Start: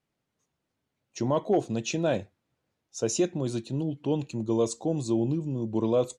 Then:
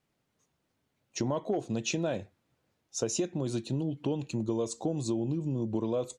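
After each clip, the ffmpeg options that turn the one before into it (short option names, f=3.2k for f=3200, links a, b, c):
-af "acompressor=threshold=-31dB:ratio=6,volume=3.5dB"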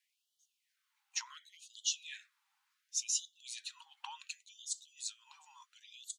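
-af "afftfilt=real='re*gte(b*sr/1024,750*pow(2900/750,0.5+0.5*sin(2*PI*0.69*pts/sr)))':imag='im*gte(b*sr/1024,750*pow(2900/750,0.5+0.5*sin(2*PI*0.69*pts/sr)))':win_size=1024:overlap=0.75,volume=1.5dB"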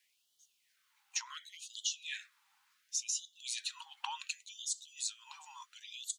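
-af "acompressor=threshold=-41dB:ratio=6,volume=7.5dB"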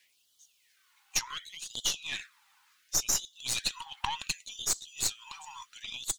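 -af "aphaser=in_gain=1:out_gain=1:delay=2.8:decay=0.36:speed=0.51:type=sinusoidal,aeval=exprs='0.112*(cos(1*acos(clip(val(0)/0.112,-1,1)))-cos(1*PI/2))+0.00891*(cos(4*acos(clip(val(0)/0.112,-1,1)))-cos(4*PI/2))+0.00631*(cos(8*acos(clip(val(0)/0.112,-1,1)))-cos(8*PI/2))':c=same,volume=6.5dB"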